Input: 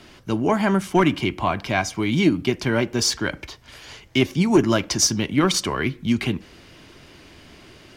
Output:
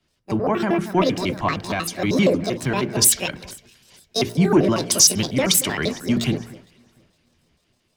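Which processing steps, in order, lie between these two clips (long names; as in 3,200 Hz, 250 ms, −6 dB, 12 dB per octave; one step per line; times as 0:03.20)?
pitch shifter gated in a rhythm +9.5 semitones, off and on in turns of 78 ms
parametric band 160 Hz +4.5 dB 0.68 octaves
hum removal 58.43 Hz, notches 8
on a send: delay that swaps between a low-pass and a high-pass 230 ms, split 2,000 Hz, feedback 67%, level −13 dB
on the sum: boost into a limiter +11.5 dB
multiband upward and downward expander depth 100%
level −10 dB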